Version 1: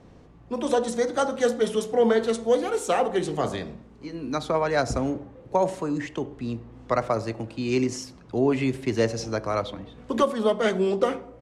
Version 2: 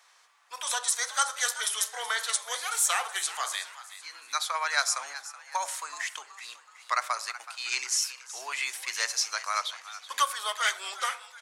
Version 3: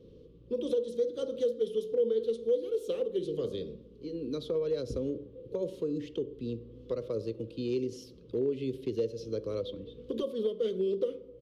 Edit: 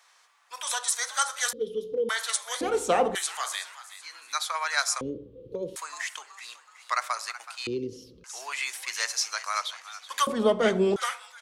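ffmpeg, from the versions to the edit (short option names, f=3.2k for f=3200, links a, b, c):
-filter_complex "[2:a]asplit=3[a][b][c];[0:a]asplit=2[d][e];[1:a]asplit=6[f][g][h][i][j][k];[f]atrim=end=1.532[l];[a]atrim=start=1.528:end=2.092[m];[g]atrim=start=2.088:end=2.612[n];[d]atrim=start=2.608:end=3.152[o];[h]atrim=start=3.148:end=5.012[p];[b]atrim=start=5.008:end=5.762[q];[i]atrim=start=5.758:end=7.672[r];[c]atrim=start=7.668:end=8.242[s];[j]atrim=start=8.238:end=10.272[t];[e]atrim=start=10.268:end=10.962[u];[k]atrim=start=10.958[v];[l][m]acrossfade=d=0.004:c1=hsin:c2=hsin[w];[w][n]acrossfade=d=0.004:c1=hsin:c2=hsin[x];[x][o]acrossfade=d=0.004:c1=hsin:c2=hsin[y];[y][p]acrossfade=d=0.004:c1=hsin:c2=hsin[z];[z][q]acrossfade=d=0.004:c1=hsin:c2=hsin[aa];[aa][r]acrossfade=d=0.004:c1=hsin:c2=hsin[ab];[ab][s]acrossfade=d=0.004:c1=hsin:c2=hsin[ac];[ac][t]acrossfade=d=0.004:c1=hsin:c2=hsin[ad];[ad][u]acrossfade=d=0.004:c1=hsin:c2=hsin[ae];[ae][v]acrossfade=d=0.004:c1=hsin:c2=hsin"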